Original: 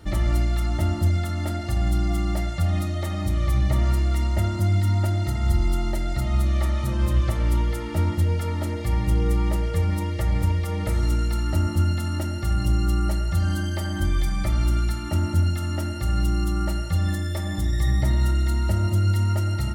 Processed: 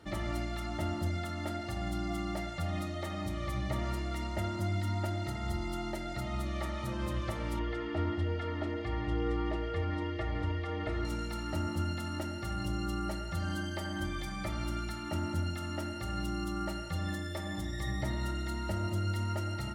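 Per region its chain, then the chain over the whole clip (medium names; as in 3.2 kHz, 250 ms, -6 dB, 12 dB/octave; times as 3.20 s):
7.59–11.05 s: low-pass 3.4 kHz + comb 2.8 ms, depth 60%
whole clip: high-pass 250 Hz 6 dB/octave; treble shelf 6.6 kHz -9 dB; trim -4.5 dB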